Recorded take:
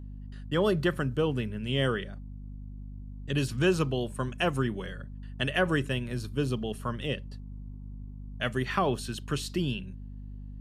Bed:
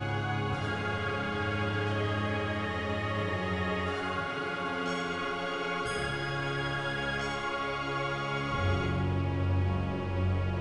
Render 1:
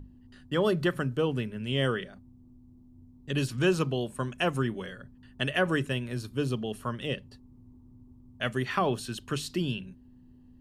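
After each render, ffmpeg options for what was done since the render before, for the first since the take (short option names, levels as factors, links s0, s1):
-af "bandreject=f=50:t=h:w=6,bandreject=f=100:t=h:w=6,bandreject=f=150:t=h:w=6,bandreject=f=200:t=h:w=6"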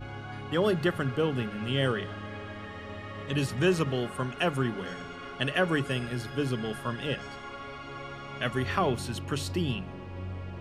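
-filter_complex "[1:a]volume=0.376[s0];[0:a][s0]amix=inputs=2:normalize=0"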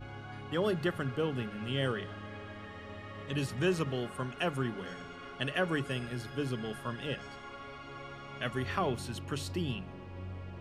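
-af "volume=0.562"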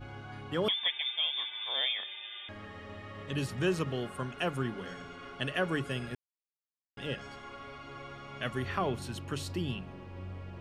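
-filter_complex "[0:a]asettb=1/sr,asplit=3[s0][s1][s2];[s0]atrim=end=0.684[s3];[s1]atrim=start=0.68:end=2.49,asetpts=PTS-STARTPTS,afade=t=in:d=0.004:c=qsin,afade=t=out:st=1.806:d=0.004:c=qsin,lowpass=f=3100:t=q:w=0.5098,lowpass=f=3100:t=q:w=0.6013,lowpass=f=3100:t=q:w=0.9,lowpass=f=3100:t=q:w=2.563,afreqshift=-3700[s4];[s2]atrim=start=2.486[s5];[s3][s4]acrossfade=d=0.004:c1=hsin:c2=qsin[s6];[s6][s5]acrossfade=d=0.004:c1=qsin:c2=hsin,asettb=1/sr,asplit=3[s7][s8][s9];[s7]atrim=end=8.624[s10];[s8]atrim=start=8.62:end=9.02,asetpts=PTS-STARTPTS,afade=t=in:d=0.004:c=qsin,afade=t=out:st=0.396:d=0.004:c=qsin,acrossover=split=3300[s11][s12];[s12]acompressor=threshold=0.00282:ratio=4:attack=1:release=60[s13];[s11][s13]amix=inputs=2:normalize=0[s14];[s9]atrim=start=9.016[s15];[s10][s14]acrossfade=d=0.004:c1=hsin:c2=qsin[s16];[s16][s15]acrossfade=d=0.004:c1=qsin:c2=hsin,asplit=3[s17][s18][s19];[s17]atrim=end=6.15,asetpts=PTS-STARTPTS,afade=t=out:st=6.146:d=0.004:c=hsin[s20];[s18]atrim=start=6.15:end=6.97,asetpts=PTS-STARTPTS,volume=0[s21];[s19]atrim=start=6.97,asetpts=PTS-STARTPTS,afade=t=in:d=0.004:c=hsin[s22];[s20][s21][s22]concat=n=3:v=0:a=1"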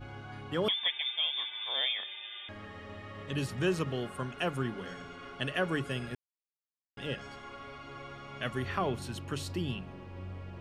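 -af anull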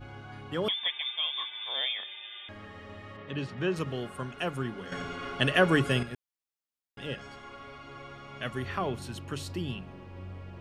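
-filter_complex "[0:a]asettb=1/sr,asplit=3[s0][s1][s2];[s0]atrim=end=0.894[s3];[s1]atrim=start=0.89:end=1.48,asetpts=PTS-STARTPTS,afade=t=in:d=0.004:c=qsin,afade=t=out:st=0.586:d=0.004:c=qsin,equalizer=f=1100:w=7.8:g=11.5[s4];[s2]atrim=start=1.476[s5];[s3][s4]acrossfade=d=0.004:c1=hsin:c2=qsin[s6];[s6][s5]acrossfade=d=0.004:c1=qsin:c2=hsin,asplit=3[s7][s8][s9];[s7]afade=t=out:st=3.16:d=0.02[s10];[s8]highpass=120,lowpass=3700,afade=t=in:st=3.16:d=0.02,afade=t=out:st=3.75:d=0.02[s11];[s9]afade=t=in:st=3.75:d=0.02[s12];[s10][s11][s12]amix=inputs=3:normalize=0,asplit=3[s13][s14][s15];[s13]atrim=end=4.922[s16];[s14]atrim=start=4.918:end=6.032,asetpts=PTS-STARTPTS,volume=2.66[s17];[s15]atrim=start=6.028[s18];[s16][s17]acrossfade=d=0.004:c1=hsin:c2=hsin[s19];[s19][s18]acrossfade=d=0.004:c1=hsin:c2=hsin"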